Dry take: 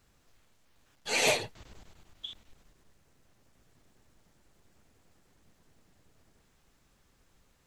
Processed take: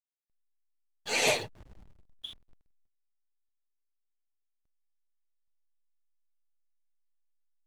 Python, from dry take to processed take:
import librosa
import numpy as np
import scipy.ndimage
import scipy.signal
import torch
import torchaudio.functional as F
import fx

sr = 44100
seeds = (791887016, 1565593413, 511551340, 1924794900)

y = fx.backlash(x, sr, play_db=-46.5)